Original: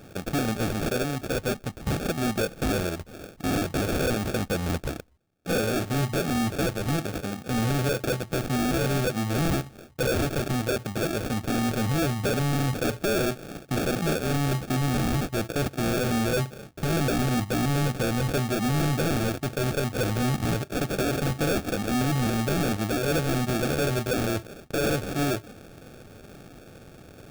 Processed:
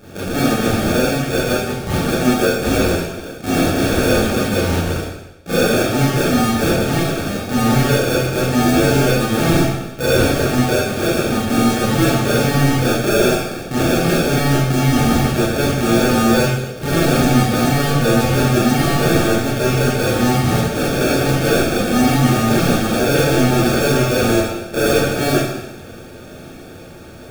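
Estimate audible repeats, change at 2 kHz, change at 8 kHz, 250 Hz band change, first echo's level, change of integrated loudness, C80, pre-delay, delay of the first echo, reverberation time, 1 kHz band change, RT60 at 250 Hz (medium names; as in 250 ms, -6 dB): no echo, +11.0 dB, +10.5 dB, +11.0 dB, no echo, +10.5 dB, 2.5 dB, 23 ms, no echo, 1.0 s, +11.0 dB, 1.0 s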